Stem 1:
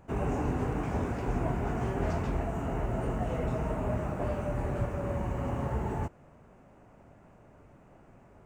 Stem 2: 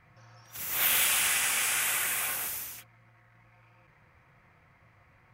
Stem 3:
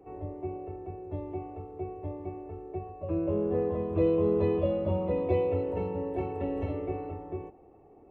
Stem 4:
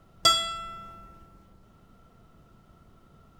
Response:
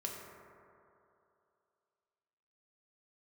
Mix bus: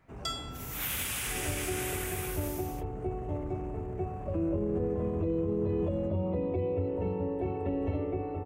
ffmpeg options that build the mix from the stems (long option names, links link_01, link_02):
-filter_complex "[0:a]asubboost=boost=3.5:cutoff=240,asoftclip=type=tanh:threshold=-24dB,volume=-12dB[link_01];[1:a]volume=-8.5dB[link_02];[2:a]acrossover=split=370[link_03][link_04];[link_04]acompressor=threshold=-38dB:ratio=6[link_05];[link_03][link_05]amix=inputs=2:normalize=0,adelay=1250,volume=2.5dB[link_06];[3:a]volume=-14.5dB[link_07];[link_01][link_02][link_06][link_07]amix=inputs=4:normalize=0,alimiter=limit=-22.5dB:level=0:latency=1:release=45"